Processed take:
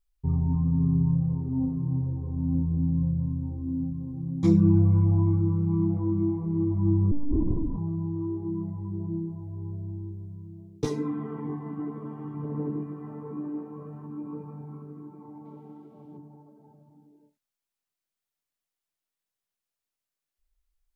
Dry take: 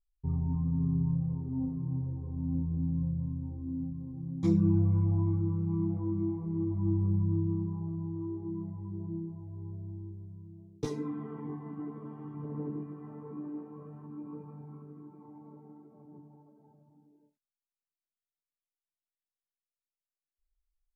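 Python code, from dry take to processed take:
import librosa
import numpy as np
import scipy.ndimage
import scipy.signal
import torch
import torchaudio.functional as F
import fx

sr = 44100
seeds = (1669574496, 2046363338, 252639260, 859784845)

y = fx.lpc_monotone(x, sr, seeds[0], pitch_hz=290.0, order=10, at=(7.11, 7.78))
y = fx.peak_eq(y, sr, hz=3100.0, db=14.0, octaves=0.94, at=(15.45, 16.17))
y = F.gain(torch.from_numpy(y), 6.0).numpy()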